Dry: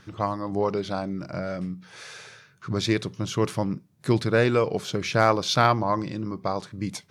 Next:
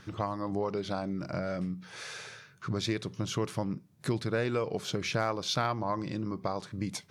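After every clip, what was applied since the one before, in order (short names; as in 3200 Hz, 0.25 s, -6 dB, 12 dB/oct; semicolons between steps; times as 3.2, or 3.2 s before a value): compressor 2.5:1, threshold -31 dBFS, peak gain reduction 12 dB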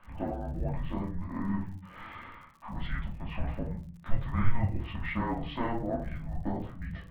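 mistuned SSB -370 Hz 200–3000 Hz; shoebox room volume 240 m³, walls furnished, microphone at 2.6 m; crackle 76/s -44 dBFS; gain -5.5 dB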